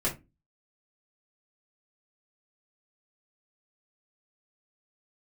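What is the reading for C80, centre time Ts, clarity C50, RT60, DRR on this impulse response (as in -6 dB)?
21.0 dB, 17 ms, 13.0 dB, 0.25 s, -5.5 dB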